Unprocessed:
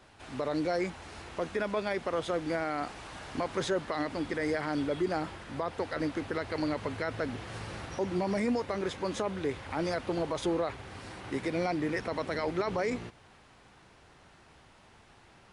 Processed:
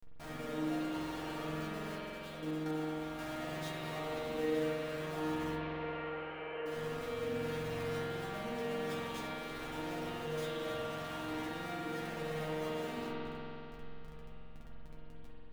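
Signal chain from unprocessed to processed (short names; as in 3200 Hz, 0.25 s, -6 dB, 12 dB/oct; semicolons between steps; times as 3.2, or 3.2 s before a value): limiter -24.5 dBFS, peak gain reduction 5.5 dB; Schmitt trigger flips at -48 dBFS; 5.55–6.66 brick-wall FIR band-pass 340–3200 Hz; resonator bank D#3 fifth, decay 0.21 s; 1.95–3.19 level quantiser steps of 11 dB; spring tank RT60 3.4 s, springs 45 ms, chirp 20 ms, DRR -6.5 dB; gain +1 dB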